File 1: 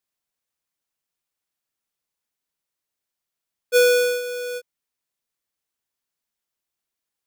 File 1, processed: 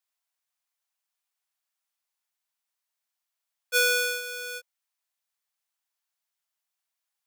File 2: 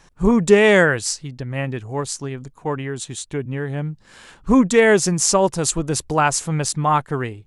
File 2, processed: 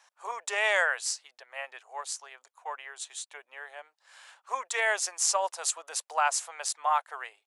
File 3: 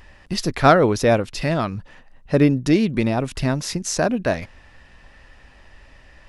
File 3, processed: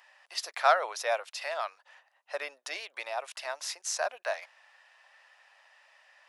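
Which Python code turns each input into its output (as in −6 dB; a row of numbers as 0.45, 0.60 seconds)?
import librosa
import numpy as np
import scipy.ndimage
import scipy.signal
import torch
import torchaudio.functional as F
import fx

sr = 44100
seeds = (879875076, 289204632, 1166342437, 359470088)

y = scipy.signal.sosfilt(scipy.signal.butter(6, 630.0, 'highpass', fs=sr, output='sos'), x)
y = y * 10.0 ** (-9 / 20.0) / np.max(np.abs(y))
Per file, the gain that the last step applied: −0.5, −7.5, −7.5 decibels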